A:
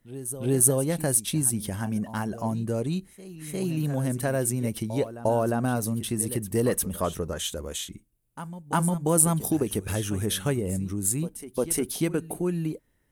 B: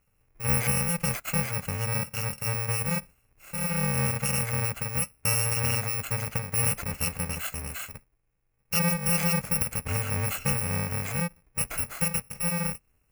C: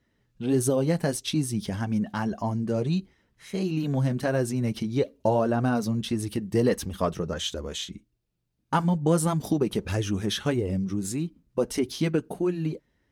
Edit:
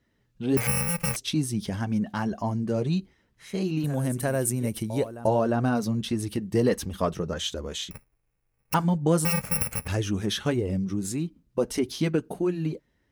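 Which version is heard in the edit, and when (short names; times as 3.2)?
C
0.57–1.16 from B
3.84–5.27 from A
7.91–8.74 from B
9.25–9.88 from B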